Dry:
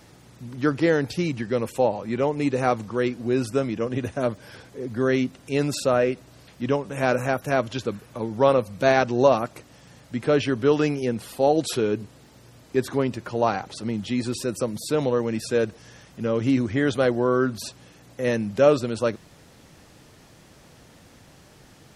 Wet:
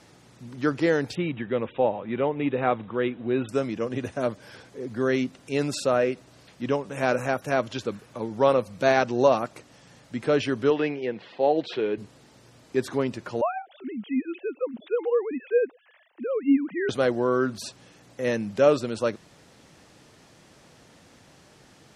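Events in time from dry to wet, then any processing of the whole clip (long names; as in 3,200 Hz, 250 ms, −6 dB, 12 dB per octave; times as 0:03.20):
0:01.15–0:03.49: linear-phase brick-wall low-pass 3,900 Hz
0:10.70–0:11.98: loudspeaker in its box 190–3,700 Hz, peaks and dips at 240 Hz −6 dB, 1,300 Hz −6 dB, 1,900 Hz +4 dB
0:13.41–0:16.89: three sine waves on the formant tracks
whole clip: low-pass filter 10,000 Hz 12 dB per octave; low-shelf EQ 94 Hz −10 dB; level −1.5 dB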